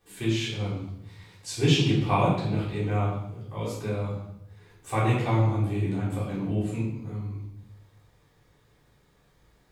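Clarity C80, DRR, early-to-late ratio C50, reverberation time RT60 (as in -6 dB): 6.0 dB, -9.5 dB, 3.0 dB, 0.75 s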